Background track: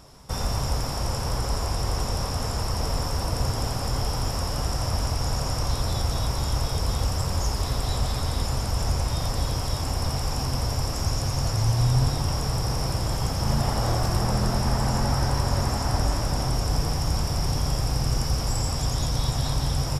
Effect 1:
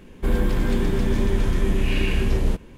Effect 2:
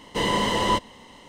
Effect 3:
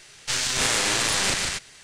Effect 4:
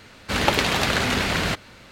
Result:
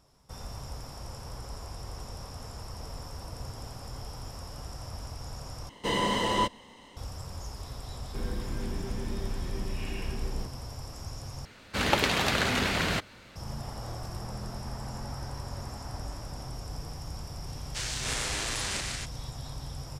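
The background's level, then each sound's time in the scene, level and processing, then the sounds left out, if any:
background track -14.5 dB
5.69 s: replace with 2 -4.5 dB
7.91 s: add 1 -14 dB
11.45 s: replace with 4 -5 dB
17.47 s: add 3 -10 dB + steep high-pass 160 Hz 72 dB/octave

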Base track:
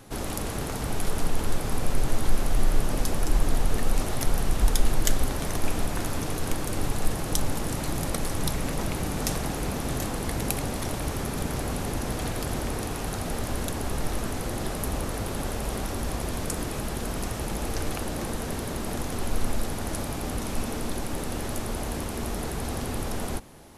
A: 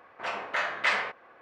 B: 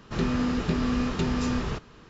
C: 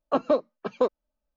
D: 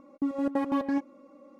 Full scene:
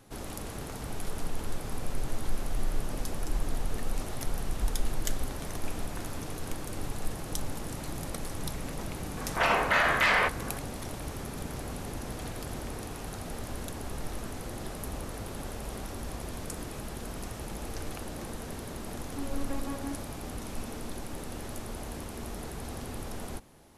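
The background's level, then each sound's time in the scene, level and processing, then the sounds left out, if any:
base track -8 dB
9.17 s: add A -14 dB + loudness maximiser +25 dB
18.95 s: add D -14.5 dB + waveshaping leveller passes 2
not used: B, C

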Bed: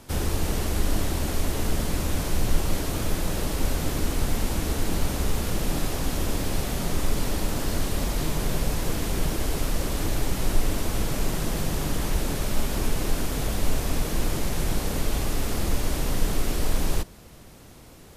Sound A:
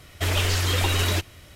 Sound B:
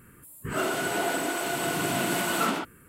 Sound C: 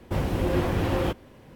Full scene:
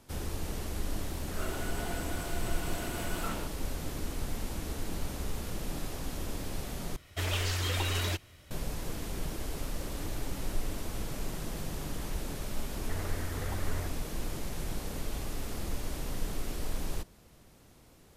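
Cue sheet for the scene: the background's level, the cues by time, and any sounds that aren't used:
bed -10.5 dB
0.83 s: add B -12.5 dB
6.96 s: replace with A -8.5 dB
9.45 s: add C -13.5 dB + inharmonic resonator 280 Hz, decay 0.2 s, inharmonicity 0.008
12.68 s: add A -14.5 dB + steep low-pass 2.1 kHz 72 dB/octave

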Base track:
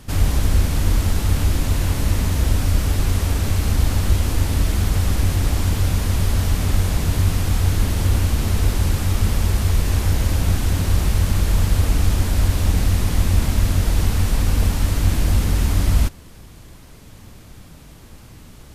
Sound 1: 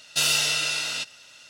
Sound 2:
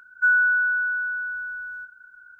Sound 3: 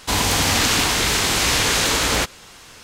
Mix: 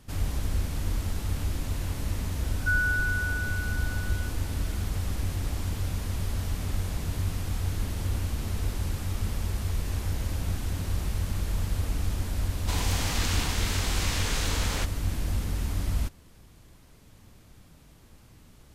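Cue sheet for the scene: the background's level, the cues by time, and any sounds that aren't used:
base track -11.5 dB
2.44 s: add 2 -8 dB
12.60 s: add 3 -13.5 dB
not used: 1

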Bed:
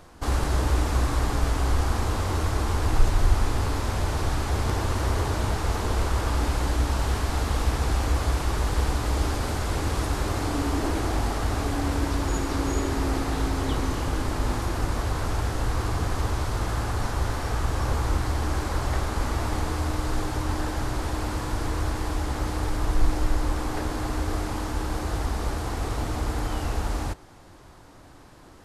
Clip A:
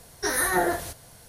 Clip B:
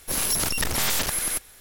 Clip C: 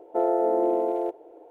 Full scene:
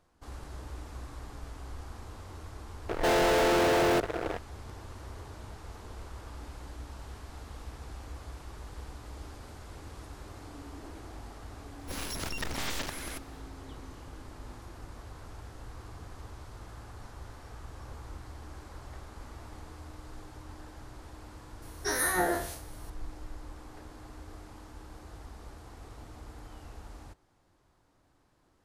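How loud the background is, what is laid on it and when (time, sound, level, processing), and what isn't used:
bed -19.5 dB
2.89 s: add C -10.5 dB + fuzz box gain 47 dB, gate -48 dBFS
11.80 s: add B -8 dB + peaking EQ 13 kHz -13.5 dB 1.2 oct
21.62 s: add A -6 dB + spectral sustain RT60 0.46 s

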